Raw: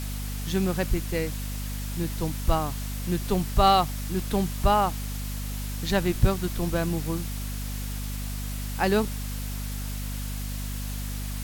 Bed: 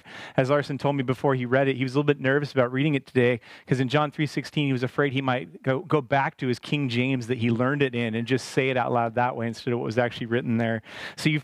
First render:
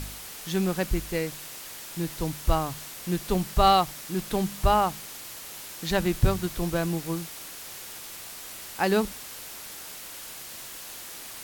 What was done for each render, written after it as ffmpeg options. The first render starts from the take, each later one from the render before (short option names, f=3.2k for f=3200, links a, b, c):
-af "bandreject=f=50:t=h:w=4,bandreject=f=100:t=h:w=4,bandreject=f=150:t=h:w=4,bandreject=f=200:t=h:w=4,bandreject=f=250:t=h:w=4"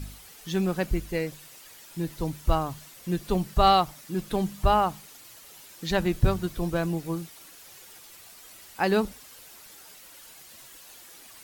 -af "afftdn=nr=10:nf=-41"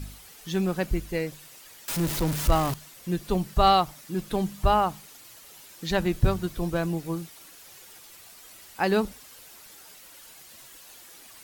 -filter_complex "[0:a]asettb=1/sr,asplit=3[a][b][c];[a]atrim=end=1.884[d];[b]atrim=start=1.88:end=2.74,asetpts=PTS-STARTPTS,afade=t=in:d=0.004:c=qsin,afade=t=out:st=0.856:d=0.004:c=qsin,aeval=exprs='val(0)+0.5*0.0531*sgn(val(0))':c=same[e];[c]atrim=start=2.736[f];[d][e]acrossfade=d=0.004:c1=hsin:c2=qsin[g];[g][f]acrossfade=d=0.004:c1=qsin:c2=hsin"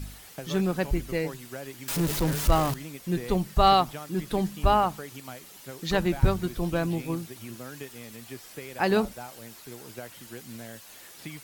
-filter_complex "[1:a]volume=-18dB[a];[0:a][a]amix=inputs=2:normalize=0"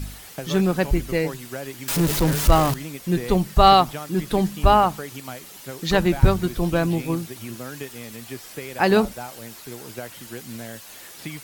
-af "volume=6dB"